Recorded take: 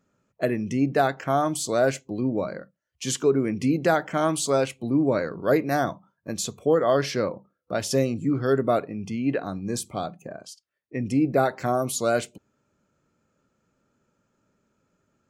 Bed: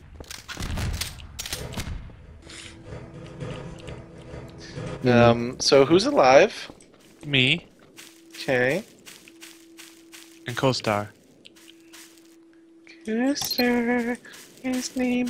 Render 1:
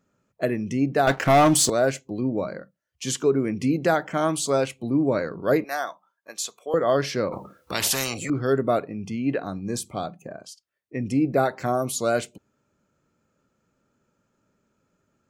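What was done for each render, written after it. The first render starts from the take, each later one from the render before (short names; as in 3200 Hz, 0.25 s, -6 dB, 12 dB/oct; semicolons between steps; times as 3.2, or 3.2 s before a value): 1.07–1.7 sample leveller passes 3; 5.64–6.74 HPF 800 Hz; 7.32–8.3 spectral compressor 4:1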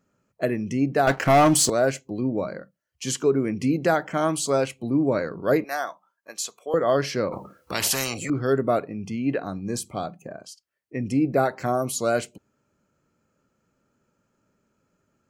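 notch 3600 Hz, Q 13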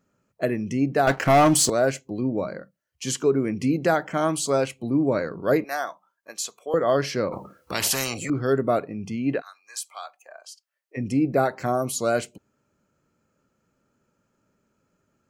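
9.4–10.96 HPF 1400 Hz -> 470 Hz 24 dB/oct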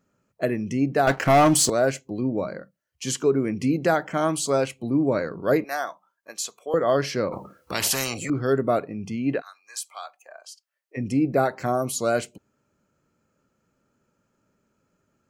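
nothing audible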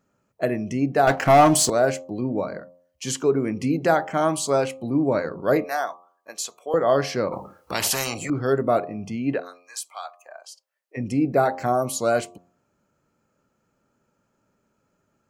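bell 810 Hz +4.5 dB 0.89 oct; de-hum 88.36 Hz, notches 14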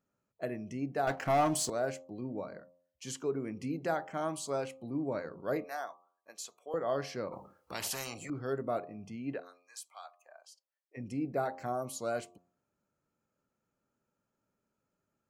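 gain -13.5 dB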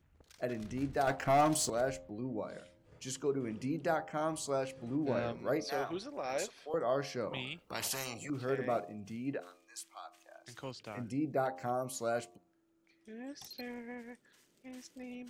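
add bed -22.5 dB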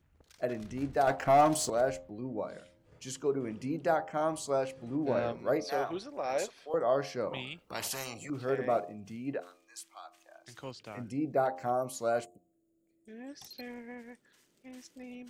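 12.25–13.08 spectral gain 730–6600 Hz -20 dB; dynamic EQ 680 Hz, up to +5 dB, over -42 dBFS, Q 0.72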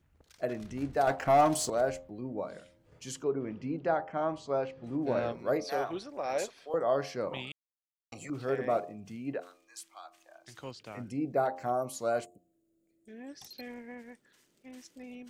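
3.24–4.84 air absorption 180 m; 7.52–8.12 mute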